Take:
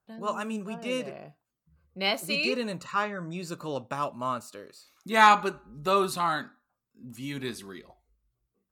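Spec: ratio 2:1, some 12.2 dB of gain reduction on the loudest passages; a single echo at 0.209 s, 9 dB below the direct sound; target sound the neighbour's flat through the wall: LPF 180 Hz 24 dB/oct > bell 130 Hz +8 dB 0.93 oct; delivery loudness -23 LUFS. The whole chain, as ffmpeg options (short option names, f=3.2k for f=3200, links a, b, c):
-af "acompressor=threshold=-36dB:ratio=2,lowpass=f=180:w=0.5412,lowpass=f=180:w=1.3066,equalizer=f=130:t=o:w=0.93:g=8,aecho=1:1:209:0.355,volume=21.5dB"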